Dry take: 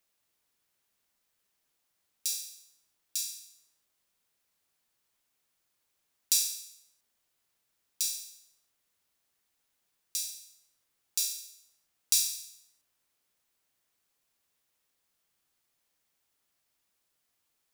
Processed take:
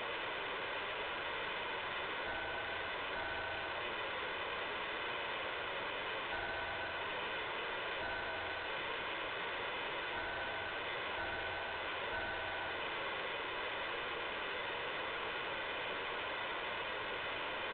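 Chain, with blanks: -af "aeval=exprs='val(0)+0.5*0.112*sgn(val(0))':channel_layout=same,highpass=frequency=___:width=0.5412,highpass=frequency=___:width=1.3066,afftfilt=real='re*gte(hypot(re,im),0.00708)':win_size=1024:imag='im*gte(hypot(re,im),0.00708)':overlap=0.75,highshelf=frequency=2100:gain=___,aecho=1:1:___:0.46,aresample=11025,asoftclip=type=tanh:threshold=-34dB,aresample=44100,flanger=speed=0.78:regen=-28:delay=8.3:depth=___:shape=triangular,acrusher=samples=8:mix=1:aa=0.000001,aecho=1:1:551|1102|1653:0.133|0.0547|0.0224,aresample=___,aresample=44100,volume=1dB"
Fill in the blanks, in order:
320, 320, -4, 2, 2.5, 8000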